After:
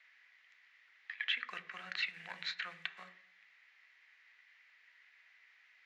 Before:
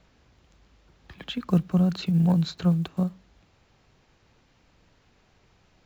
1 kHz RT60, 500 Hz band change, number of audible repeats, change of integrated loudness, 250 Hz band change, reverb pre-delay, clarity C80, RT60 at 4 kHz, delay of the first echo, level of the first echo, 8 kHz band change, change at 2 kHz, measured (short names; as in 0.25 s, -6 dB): 0.60 s, -26.0 dB, none, -15.0 dB, under -40 dB, 3 ms, 17.5 dB, 0.45 s, none, none, n/a, +7.5 dB